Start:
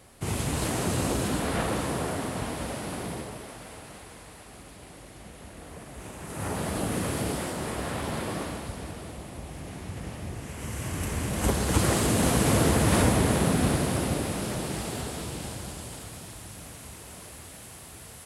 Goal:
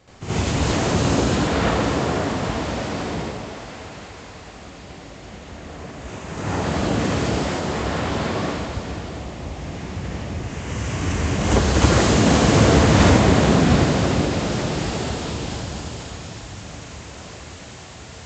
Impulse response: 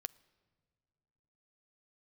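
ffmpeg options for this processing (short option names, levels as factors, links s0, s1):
-filter_complex "[0:a]aresample=16000,aresample=44100,asplit=2[s0][s1];[1:a]atrim=start_sample=2205,asetrate=26019,aresample=44100,adelay=76[s2];[s1][s2]afir=irnorm=-1:irlink=0,volume=2.99[s3];[s0][s3]amix=inputs=2:normalize=0,volume=0.891"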